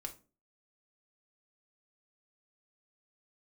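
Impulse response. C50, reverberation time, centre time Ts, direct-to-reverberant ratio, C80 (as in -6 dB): 13.5 dB, 0.35 s, 8 ms, 3.0 dB, 20.5 dB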